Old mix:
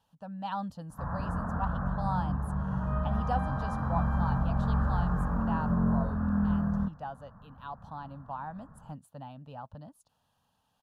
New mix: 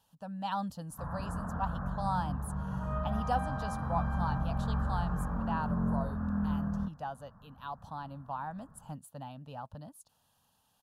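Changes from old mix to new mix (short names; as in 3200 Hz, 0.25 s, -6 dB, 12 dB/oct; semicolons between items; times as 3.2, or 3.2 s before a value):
speech: remove LPF 3100 Hz 6 dB/oct; first sound -4.5 dB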